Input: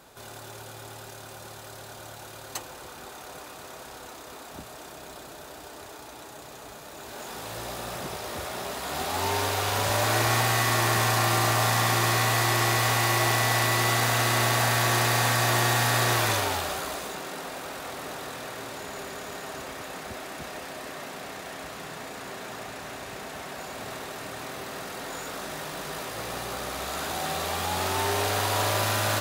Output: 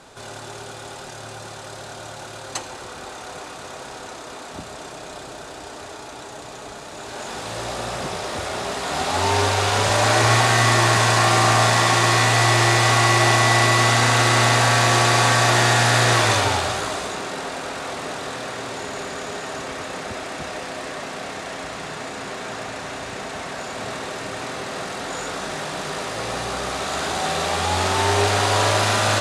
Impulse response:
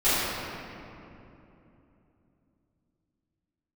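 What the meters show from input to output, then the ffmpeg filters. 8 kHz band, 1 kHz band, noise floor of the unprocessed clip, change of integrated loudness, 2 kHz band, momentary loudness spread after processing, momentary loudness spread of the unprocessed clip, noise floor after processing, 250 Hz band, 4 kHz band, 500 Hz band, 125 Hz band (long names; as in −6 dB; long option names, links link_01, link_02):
+5.5 dB, +7.5 dB, −44 dBFS, +7.0 dB, +7.5 dB, 20 LU, 20 LU, −37 dBFS, +7.0 dB, +7.0 dB, +7.5 dB, +7.0 dB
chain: -filter_complex "[0:a]lowpass=frequency=9200:width=0.5412,lowpass=frequency=9200:width=1.3066,asplit=2[link_01][link_02];[1:a]atrim=start_sample=2205,asetrate=83790,aresample=44100[link_03];[link_02][link_03]afir=irnorm=-1:irlink=0,volume=-22dB[link_04];[link_01][link_04]amix=inputs=2:normalize=0,volume=6.5dB"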